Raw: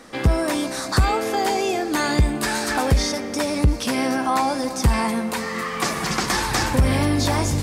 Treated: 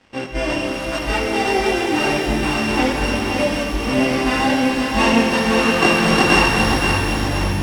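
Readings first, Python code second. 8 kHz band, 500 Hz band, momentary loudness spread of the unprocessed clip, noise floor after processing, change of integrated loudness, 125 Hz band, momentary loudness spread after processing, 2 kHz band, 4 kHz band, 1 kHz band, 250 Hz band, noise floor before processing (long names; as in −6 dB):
−2.5 dB, +5.0 dB, 5 LU, −25 dBFS, +4.0 dB, −2.0 dB, 8 LU, +7.0 dB, +5.0 dB, +3.0 dB, +5.0 dB, −29 dBFS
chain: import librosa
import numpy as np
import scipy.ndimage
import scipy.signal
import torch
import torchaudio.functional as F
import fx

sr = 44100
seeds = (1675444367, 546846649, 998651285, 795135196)

p1 = np.r_[np.sort(x[:len(x) // 16 * 16].reshape(-1, 16), axis=1).ravel(), x[len(x) // 16 * 16:]]
p2 = fx.low_shelf(p1, sr, hz=210.0, db=7.5)
p3 = fx.over_compress(p2, sr, threshold_db=-19.0, ratio=-0.5)
p4 = np.sign(p3) * np.maximum(np.abs(p3) - 10.0 ** (-38.0 / 20.0), 0.0)
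p5 = fx.spec_box(p4, sr, start_s=4.98, length_s=1.48, low_hz=240.0, high_hz=8400.0, gain_db=6)
p6 = fx.chorus_voices(p5, sr, voices=2, hz=0.87, base_ms=21, depth_ms=2.4, mix_pct=50)
p7 = fx.air_absorb(p6, sr, metres=100.0)
p8 = p7 + fx.echo_feedback(p7, sr, ms=522, feedback_pct=47, wet_db=-5.5, dry=0)
p9 = fx.rev_shimmer(p8, sr, seeds[0], rt60_s=2.6, semitones=12, shimmer_db=-8, drr_db=3.5)
y = p9 * librosa.db_to_amplitude(2.0)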